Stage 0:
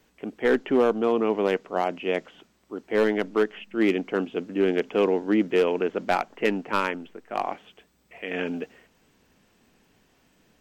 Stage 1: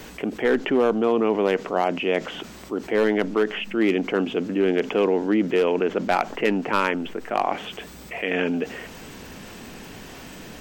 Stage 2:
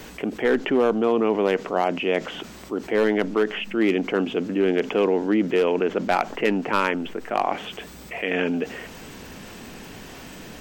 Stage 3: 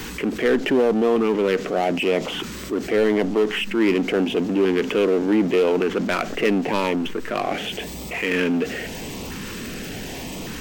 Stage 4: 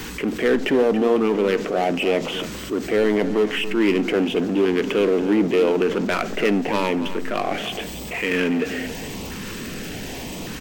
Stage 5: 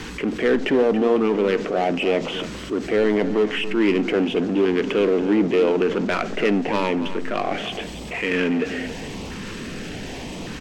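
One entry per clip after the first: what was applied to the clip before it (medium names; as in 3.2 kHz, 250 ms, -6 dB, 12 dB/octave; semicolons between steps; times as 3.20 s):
level flattener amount 50%
no audible change
LFO notch saw up 0.86 Hz 590–1700 Hz; power-law waveshaper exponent 0.7
delay 280 ms -13 dB; on a send at -18.5 dB: reverberation RT60 0.85 s, pre-delay 19 ms
distance through air 58 m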